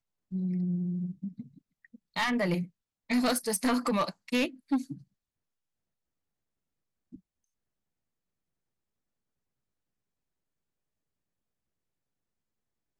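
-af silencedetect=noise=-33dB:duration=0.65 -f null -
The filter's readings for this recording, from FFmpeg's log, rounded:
silence_start: 1.41
silence_end: 2.16 | silence_duration: 0.76
silence_start: 4.93
silence_end: 12.99 | silence_duration: 8.06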